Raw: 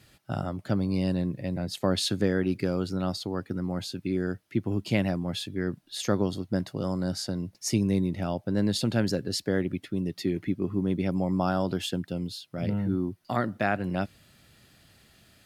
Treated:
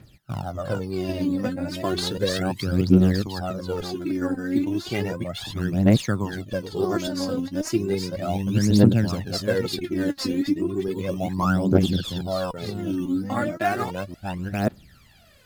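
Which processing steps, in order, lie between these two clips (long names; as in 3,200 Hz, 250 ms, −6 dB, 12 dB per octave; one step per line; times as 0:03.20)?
delay that plays each chunk backwards 544 ms, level −1 dB
parametric band 9,000 Hz −4.5 dB 0.64 octaves
in parallel at −9 dB: sample-and-hold swept by an LFO 10×, swing 100% 1.1 Hz
on the sum: healed spectral selection 0:11.94–0:12.15, 1,900–5,700 Hz before
phase shifter 0.34 Hz, delay 4 ms, feedback 76%
level −3.5 dB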